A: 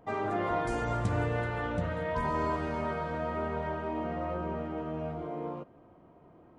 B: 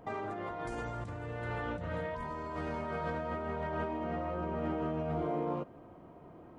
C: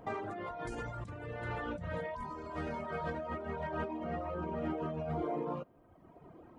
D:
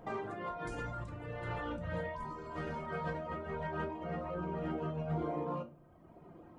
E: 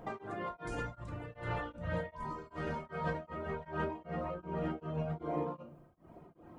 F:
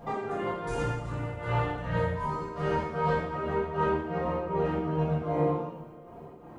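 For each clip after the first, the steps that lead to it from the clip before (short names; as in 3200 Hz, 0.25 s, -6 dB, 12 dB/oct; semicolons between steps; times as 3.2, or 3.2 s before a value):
negative-ratio compressor -37 dBFS, ratio -1
reverb removal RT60 1.3 s; gain +1 dB
shoebox room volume 240 m³, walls furnished, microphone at 0.85 m; gain -1.5 dB
beating tremolo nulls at 2.6 Hz; gain +3 dB
two-slope reverb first 0.84 s, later 3 s, from -18 dB, DRR -8.5 dB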